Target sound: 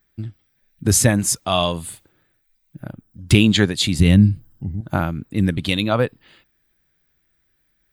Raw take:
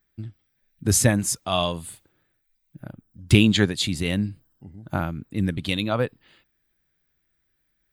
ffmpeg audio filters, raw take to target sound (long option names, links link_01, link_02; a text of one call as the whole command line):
ffmpeg -i in.wav -filter_complex "[0:a]asettb=1/sr,asplit=3[link_01][link_02][link_03];[link_01]atrim=end=3.994[link_04];[link_02]atrim=start=3.99:end=4.81,asetpts=PTS-STARTPTS,afade=type=in:duration=0.004:curve=qsin,afade=type=out:start_time=0.816:duration=0.004:curve=qsin,bass=frequency=250:gain=13,treble=frequency=4000:gain=1[link_05];[link_03]atrim=start=4.806[link_06];[link_04][link_05]acrossfade=duration=0.004:curve1=hsin:curve2=qsin[link_07];[link_07][link_06]acrossfade=duration=0.004:curve1=qsin:curve2=hsin,asplit=2[link_08][link_09];[link_09]alimiter=limit=-12.5dB:level=0:latency=1:release=250,volume=1dB[link_10];[link_08][link_10]amix=inputs=2:normalize=0,volume=-1dB" out.wav